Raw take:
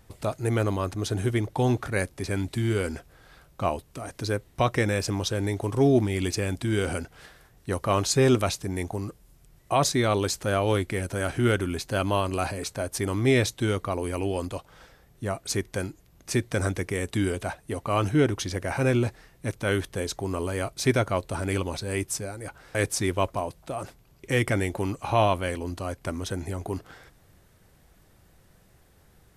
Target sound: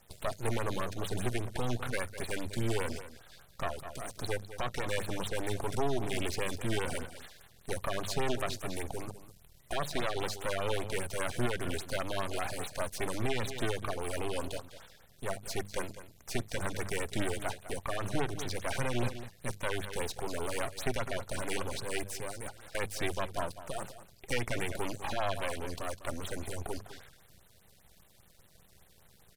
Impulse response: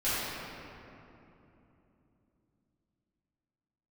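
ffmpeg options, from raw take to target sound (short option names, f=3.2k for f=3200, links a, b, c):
-filter_complex "[0:a]firequalizer=gain_entry='entry(1700,0);entry(4000,8);entry(6900,4)':delay=0.05:min_phase=1,acrossover=split=2700[a][b];[b]acompressor=threshold=-35dB:ratio=4:attack=1:release=60[c];[a][c]amix=inputs=2:normalize=0,acrossover=split=130[d][e];[d]aeval=exprs='max(val(0),0)':c=same[f];[f][e]amix=inputs=2:normalize=0,bandreject=f=50:t=h:w=6,bandreject=f=100:t=h:w=6,bandreject=f=150:t=h:w=6,bandreject=f=200:t=h:w=6,asplit=2[g][h];[h]aecho=0:1:202:0.2[i];[g][i]amix=inputs=2:normalize=0,alimiter=limit=-16.5dB:level=0:latency=1:release=175,aeval=exprs='max(val(0),0)':c=same,equalizer=f=300:t=o:w=0.71:g=-6.5,afftfilt=real='re*(1-between(b*sr/1024,930*pow(6300/930,0.5+0.5*sin(2*PI*5*pts/sr))/1.41,930*pow(6300/930,0.5+0.5*sin(2*PI*5*pts/sr))*1.41))':imag='im*(1-between(b*sr/1024,930*pow(6300/930,0.5+0.5*sin(2*PI*5*pts/sr))/1.41,930*pow(6300/930,0.5+0.5*sin(2*PI*5*pts/sr))*1.41))':win_size=1024:overlap=0.75"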